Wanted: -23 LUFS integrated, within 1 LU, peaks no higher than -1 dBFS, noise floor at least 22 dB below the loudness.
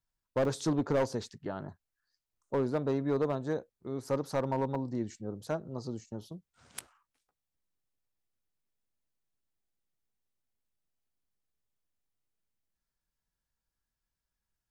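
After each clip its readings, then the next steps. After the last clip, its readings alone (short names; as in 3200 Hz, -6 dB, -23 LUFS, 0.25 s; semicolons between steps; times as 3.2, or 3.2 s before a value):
clipped 0.5%; flat tops at -23.0 dBFS; dropouts 2; longest dropout 2.1 ms; loudness -34.0 LUFS; peak -23.0 dBFS; loudness target -23.0 LUFS
-> clip repair -23 dBFS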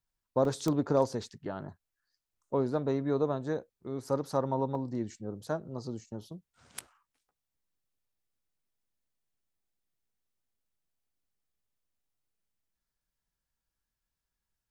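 clipped 0.0%; dropouts 2; longest dropout 2.1 ms
-> interpolate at 0.45/4.75, 2.1 ms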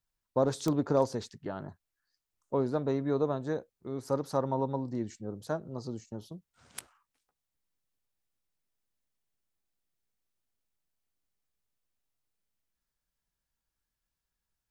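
dropouts 0; loudness -33.0 LUFS; peak -14.0 dBFS; loudness target -23.0 LUFS
-> gain +10 dB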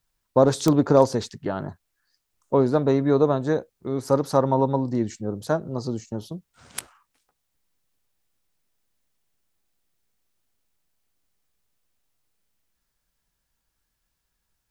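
loudness -23.0 LUFS; peak -4.0 dBFS; noise floor -78 dBFS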